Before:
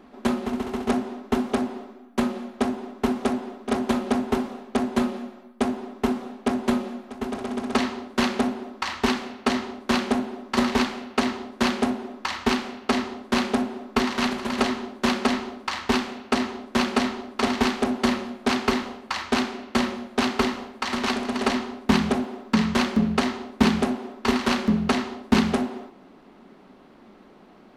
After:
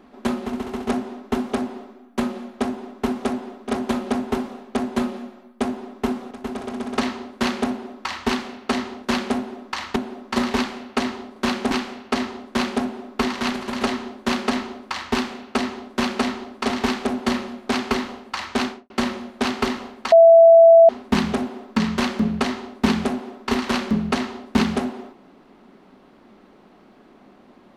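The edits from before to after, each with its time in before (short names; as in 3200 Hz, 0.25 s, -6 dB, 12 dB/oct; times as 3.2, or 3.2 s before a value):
6.31–7.08 cut
9.82–10.17 swap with 11.57–12.48
19.42–19.67 studio fade out
20.89–21.66 bleep 664 Hz -6 dBFS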